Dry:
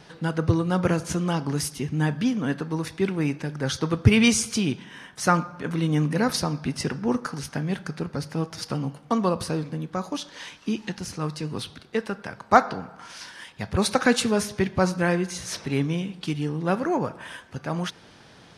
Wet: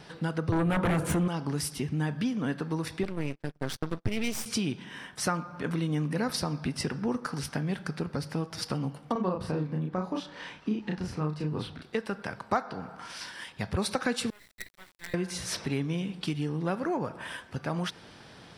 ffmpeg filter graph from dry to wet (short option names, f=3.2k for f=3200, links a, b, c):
-filter_complex "[0:a]asettb=1/sr,asplit=3[a][b][c];[a]atrim=end=0.524[d];[b]atrim=start=0.52:end=1.28,asetpts=PTS-STARTPTS,afade=t=in:d=0.004:c=qsin,afade=t=out:st=0.756:d=0.004:c=qsin,bandreject=f=60:t=h:w=6,bandreject=f=120:t=h:w=6,bandreject=f=180:t=h:w=6,bandreject=f=240:t=h:w=6,bandreject=f=300:t=h:w=6,bandreject=f=360:t=h:w=6,bandreject=f=420:t=h:w=6,bandreject=f=480:t=h:w=6,bandreject=f=540:t=h:w=6,aeval=exprs='0.266*sin(PI/2*3.16*val(0)/0.266)':c=same,equalizer=f=5.2k:w=1.3:g=-15[e];[c]atrim=start=1.276[f];[d][e]acrossfade=d=0.004:c1=hsin:c2=qsin[g];[g][f]acrossfade=d=0.004:c1=qsin:c2=hsin,asettb=1/sr,asplit=3[h][i][j];[h]atrim=end=3.034[k];[i]atrim=start=3.03:end=4.46,asetpts=PTS-STARTPTS,afade=t=in:d=0.004:c=qsin,afade=t=out:st=1.426:d=0.004:c=qsin,agate=range=-31dB:threshold=-31dB:ratio=16:release=100:detection=peak,aeval=exprs='max(val(0),0)':c=same[l];[j]atrim=start=4.456[m];[k][l]acrossfade=d=0.004:c1=hsin:c2=qsin[n];[n][m]acrossfade=d=0.004:c1=qsin:c2=hsin,asettb=1/sr,asplit=3[o][p][q];[o]atrim=end=9.124[r];[p]atrim=start=9.12:end=11.82,asetpts=PTS-STARTPTS,afade=t=in:d=0.004:c=qsin,afade=t=out:st=2.696:d=0.004:c=qsin,lowpass=f=1.5k:p=1,asplit=2[s][t];[t]adelay=33,volume=-2dB[u];[s][u]amix=inputs=2:normalize=0,atrim=end_sample=119070[v];[q]atrim=start=11.816[w];[r][v]acrossfade=d=0.004:c1=hsin:c2=qsin[x];[x][w]acrossfade=d=0.004:c1=qsin:c2=hsin,asettb=1/sr,asplit=3[y][z][aa];[y]atrim=end=14.304[ab];[z]atrim=start=14.3:end=15.14,asetpts=PTS-STARTPTS,afade=t=in:d=0.004:c=qsin,afade=t=out:st=0.836:d=0.004:c=qsin,bandpass=f=2k:t=q:w=14,acrusher=bits=6:dc=4:mix=0:aa=0.000001[ac];[aa]atrim=start=15.136[ad];[ab][ac]acrossfade=d=0.004:c1=hsin:c2=qsin[ae];[ae][ad]acrossfade=d=0.004:c1=qsin:c2=hsin,bandreject=f=6.5k:w=9.1,acompressor=threshold=-28dB:ratio=3"